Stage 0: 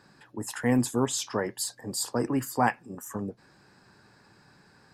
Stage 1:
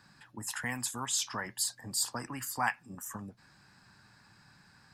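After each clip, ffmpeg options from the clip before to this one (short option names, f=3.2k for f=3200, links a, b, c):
-filter_complex "[0:a]equalizer=f=430:w=1.1:g=-13.5,acrossover=split=750|6400[a][b][c];[a]acompressor=threshold=-40dB:ratio=6[d];[d][b][c]amix=inputs=3:normalize=0"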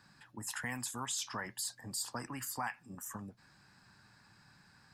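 -af "alimiter=level_in=0.5dB:limit=-24dB:level=0:latency=1:release=61,volume=-0.5dB,volume=-2.5dB"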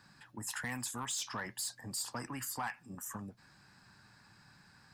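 -af "asoftclip=type=tanh:threshold=-31dB,volume=1.5dB"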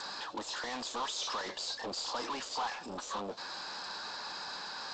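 -filter_complex "[0:a]asplit=2[a][b];[b]highpass=f=720:p=1,volume=34dB,asoftclip=type=tanh:threshold=-30dB[c];[a][c]amix=inputs=2:normalize=0,lowpass=f=4.7k:p=1,volume=-6dB,equalizer=f=125:t=o:w=1:g=-12,equalizer=f=500:t=o:w=1:g=9,equalizer=f=1k:t=o:w=1:g=6,equalizer=f=2k:t=o:w=1:g=-7,equalizer=f=4k:t=o:w=1:g=11,volume=-5dB" -ar 16000 -c:a g722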